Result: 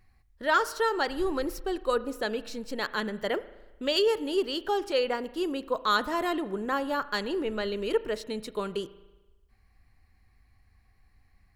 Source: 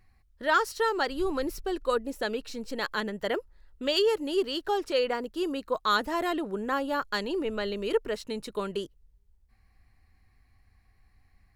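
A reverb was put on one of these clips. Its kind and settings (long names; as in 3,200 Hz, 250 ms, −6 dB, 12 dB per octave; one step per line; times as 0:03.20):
spring reverb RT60 1.1 s, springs 37 ms, chirp 70 ms, DRR 15.5 dB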